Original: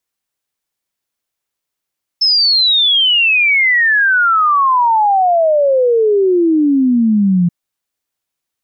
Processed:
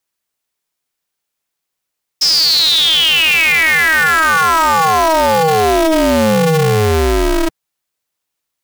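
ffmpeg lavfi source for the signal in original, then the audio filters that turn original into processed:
-f lavfi -i "aevalsrc='0.376*clip(min(t,5.28-t)/0.01,0,1)*sin(2*PI*5300*5.28/log(170/5300)*(exp(log(170/5300)*t/5.28)-1))':d=5.28:s=44100"
-filter_complex "[0:a]equalizer=f=65:t=o:w=1.5:g=-10.5,asplit=2[s0][s1];[s1]aeval=exprs='(mod(8.41*val(0)+1,2)-1)/8.41':c=same,volume=0.335[s2];[s0][s2]amix=inputs=2:normalize=0,aeval=exprs='val(0)*sgn(sin(2*PI*160*n/s))':c=same"

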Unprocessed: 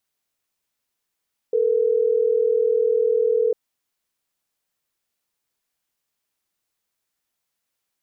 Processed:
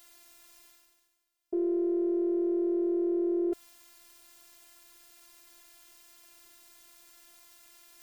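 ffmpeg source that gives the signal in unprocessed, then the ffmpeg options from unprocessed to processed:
-f lavfi -i "aevalsrc='0.112*(sin(2*PI*440*t)+sin(2*PI*480*t))*clip(min(mod(t,6),2-mod(t,6))/0.005,0,1)':d=3.12:s=44100"
-af "areverse,acompressor=mode=upward:threshold=0.0251:ratio=2.5,areverse,afftfilt=real='hypot(re,im)*cos(PI*b)':imag='0':win_size=512:overlap=0.75"

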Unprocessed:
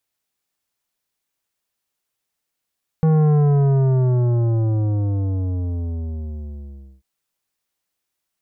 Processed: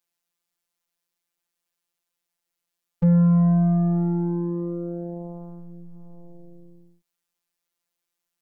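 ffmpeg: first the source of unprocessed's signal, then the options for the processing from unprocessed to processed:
-f lavfi -i "aevalsrc='0.211*clip((3.99-t)/3.69,0,1)*tanh(3.76*sin(2*PI*160*3.99/log(65/160)*(exp(log(65/160)*t/3.99)-1)))/tanh(3.76)':d=3.99:s=44100"
-af "afftfilt=real='hypot(re,im)*cos(PI*b)':imag='0':win_size=1024:overlap=0.75"

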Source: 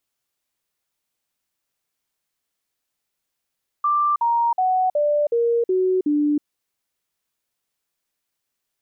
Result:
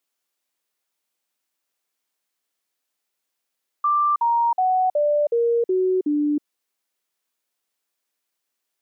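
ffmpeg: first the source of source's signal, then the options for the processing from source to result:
-f lavfi -i "aevalsrc='0.158*clip(min(mod(t,0.37),0.32-mod(t,0.37))/0.005,0,1)*sin(2*PI*1180*pow(2,-floor(t/0.37)/3)*mod(t,0.37))':d=2.59:s=44100"
-af "highpass=240"

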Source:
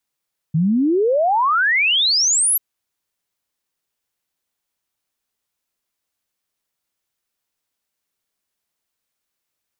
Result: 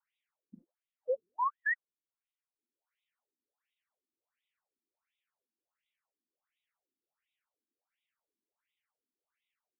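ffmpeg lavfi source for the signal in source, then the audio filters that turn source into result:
-f lavfi -i "aevalsrc='0.211*clip(min(t,2.04-t)/0.01,0,1)*sin(2*PI*150*2.04/log(12000/150)*(exp(log(12000/150)*t/2.04)-1))':d=2.04:s=44100"
-filter_complex "[0:a]alimiter=level_in=1.19:limit=0.0631:level=0:latency=1,volume=0.841,asplit=2[s0][s1];[s1]adelay=12,volume=0.224[s2];[s0][s2]amix=inputs=2:normalize=0,afftfilt=real='re*between(b*sr/1024,270*pow(2800/270,0.5+0.5*sin(2*PI*1.4*pts/sr))/1.41,270*pow(2800/270,0.5+0.5*sin(2*PI*1.4*pts/sr))*1.41)':imag='im*between(b*sr/1024,270*pow(2800/270,0.5+0.5*sin(2*PI*1.4*pts/sr))/1.41,270*pow(2800/270,0.5+0.5*sin(2*PI*1.4*pts/sr))*1.41)':win_size=1024:overlap=0.75"

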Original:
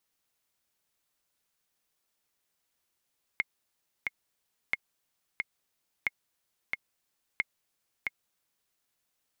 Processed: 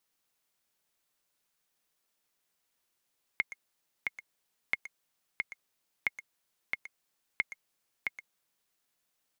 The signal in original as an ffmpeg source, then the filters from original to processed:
-f lavfi -i "aevalsrc='pow(10,(-14-3.5*gte(mod(t,2*60/90),60/90))/20)*sin(2*PI*2150*mod(t,60/90))*exp(-6.91*mod(t,60/90)/0.03)':d=5.33:s=44100"
-filter_complex "[0:a]equalizer=f=64:t=o:w=0.79:g=-10,asplit=2[s0][s1];[s1]adelay=120,highpass=300,lowpass=3400,asoftclip=type=hard:threshold=0.0596,volume=0.282[s2];[s0][s2]amix=inputs=2:normalize=0"

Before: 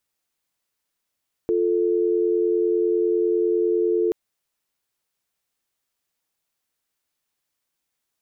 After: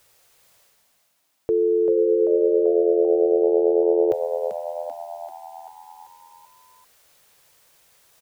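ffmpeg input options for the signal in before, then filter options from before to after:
-f lavfi -i "aevalsrc='0.0944*(sin(2*PI*350*t)+sin(2*PI*440*t))':d=2.63:s=44100"
-filter_complex "[0:a]equalizer=f=125:t=o:w=1:g=4,equalizer=f=250:t=o:w=1:g=-11,equalizer=f=500:t=o:w=1:g=7,areverse,acompressor=mode=upward:threshold=0.00891:ratio=2.5,areverse,asplit=8[s0][s1][s2][s3][s4][s5][s6][s7];[s1]adelay=389,afreqshift=81,volume=0.422[s8];[s2]adelay=778,afreqshift=162,volume=0.24[s9];[s3]adelay=1167,afreqshift=243,volume=0.136[s10];[s4]adelay=1556,afreqshift=324,volume=0.0785[s11];[s5]adelay=1945,afreqshift=405,volume=0.0447[s12];[s6]adelay=2334,afreqshift=486,volume=0.0254[s13];[s7]adelay=2723,afreqshift=567,volume=0.0145[s14];[s0][s8][s9][s10][s11][s12][s13][s14]amix=inputs=8:normalize=0"

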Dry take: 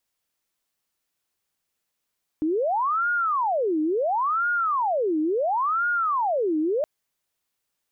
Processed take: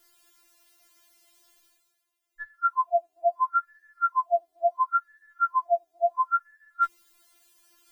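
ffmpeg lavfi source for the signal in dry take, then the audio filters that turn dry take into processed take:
-f lavfi -i "aevalsrc='0.0944*sin(2*PI*(868*t-562/(2*PI*0.72)*sin(2*PI*0.72*t)))':d=4.42:s=44100"
-af "afftfilt=real='real(if(between(b,1,1012),(2*floor((b-1)/92)+1)*92-b,b),0)':imag='imag(if(between(b,1,1012),(2*floor((b-1)/92)+1)*92-b,b),0)*if(between(b,1,1012),-1,1)':win_size=2048:overlap=0.75,areverse,acompressor=mode=upward:threshold=0.00794:ratio=2.5,areverse,afftfilt=real='re*4*eq(mod(b,16),0)':imag='im*4*eq(mod(b,16),0)':win_size=2048:overlap=0.75"

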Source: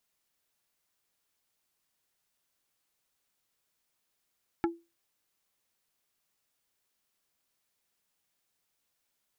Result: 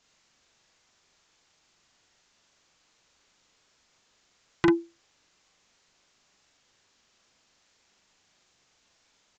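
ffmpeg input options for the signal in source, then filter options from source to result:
-f lavfi -i "aevalsrc='0.0794*pow(10,-3*t/0.26)*sin(2*PI*337*t)+0.0501*pow(10,-3*t/0.087)*sin(2*PI*842.5*t)+0.0316*pow(10,-3*t/0.049)*sin(2*PI*1348*t)+0.02*pow(10,-3*t/0.038)*sin(2*PI*1685*t)+0.0126*pow(10,-3*t/0.028)*sin(2*PI*2190.5*t)':d=0.45:s=44100"
-filter_complex "[0:a]aresample=16000,aeval=exprs='0.15*sin(PI/2*3.16*val(0)/0.15)':c=same,aresample=44100,asplit=2[s0][s1];[s1]adelay=41,volume=0.794[s2];[s0][s2]amix=inputs=2:normalize=0"

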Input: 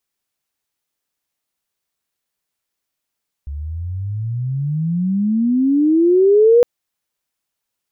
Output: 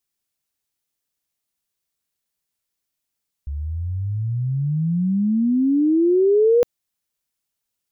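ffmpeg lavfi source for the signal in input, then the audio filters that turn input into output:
-f lavfi -i "aevalsrc='pow(10,(-24+17.5*t/3.16)/20)*sin(2*PI*69*3.16/log(490/69)*(exp(log(490/69)*t/3.16)-1))':d=3.16:s=44100"
-af "equalizer=f=1000:w=0.32:g=-6"

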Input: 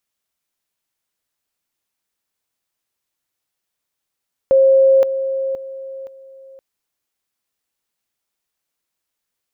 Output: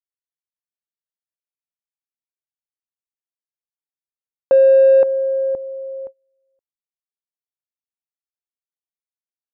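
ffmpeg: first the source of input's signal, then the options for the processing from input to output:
-f lavfi -i "aevalsrc='pow(10,(-8-10*floor(t/0.52))/20)*sin(2*PI*536*t)':d=2.08:s=44100"
-filter_complex "[0:a]agate=range=0.0355:threshold=0.02:ratio=16:detection=peak,lowpass=1000,asplit=2[s0][s1];[s1]asoftclip=type=tanh:threshold=0.15,volume=0.355[s2];[s0][s2]amix=inputs=2:normalize=0"

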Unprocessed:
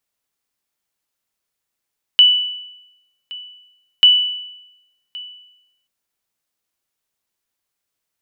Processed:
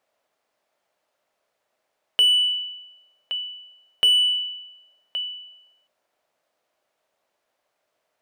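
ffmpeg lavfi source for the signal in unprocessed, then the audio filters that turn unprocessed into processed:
-f lavfi -i "aevalsrc='0.668*(sin(2*PI*2970*mod(t,1.84))*exp(-6.91*mod(t,1.84)/0.91)+0.0794*sin(2*PI*2970*max(mod(t,1.84)-1.12,0))*exp(-6.91*max(mod(t,1.84)-1.12,0)/0.91))':d=3.68:s=44100"
-filter_complex "[0:a]equalizer=f=610:t=o:w=0.56:g=11.5,asplit=2[s0][s1];[s1]highpass=f=720:p=1,volume=10,asoftclip=type=tanh:threshold=0.75[s2];[s0][s2]amix=inputs=2:normalize=0,lowpass=f=1000:p=1,volume=0.501"

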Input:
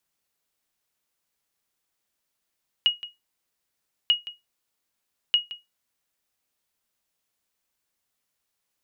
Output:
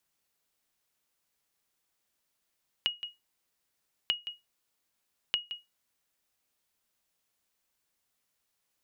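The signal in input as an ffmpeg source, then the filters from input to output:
-f lavfi -i "aevalsrc='0.266*(sin(2*PI*2890*mod(t,1.24))*exp(-6.91*mod(t,1.24)/0.19)+0.15*sin(2*PI*2890*max(mod(t,1.24)-0.17,0))*exp(-6.91*max(mod(t,1.24)-0.17,0)/0.19))':d=3.72:s=44100"
-af "acompressor=threshold=0.0398:ratio=12"

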